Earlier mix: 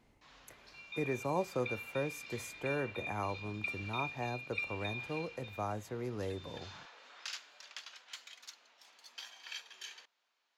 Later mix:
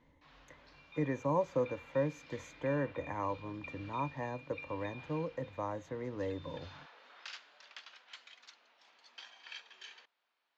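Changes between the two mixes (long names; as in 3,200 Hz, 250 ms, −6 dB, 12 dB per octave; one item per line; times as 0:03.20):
speech: add EQ curve with evenly spaced ripples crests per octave 1.1, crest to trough 12 dB
second sound −8.0 dB
master: add high-frequency loss of the air 160 metres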